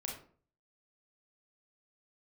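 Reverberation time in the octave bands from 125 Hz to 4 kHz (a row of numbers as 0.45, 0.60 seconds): 0.60, 0.50, 0.50, 0.45, 0.35, 0.30 seconds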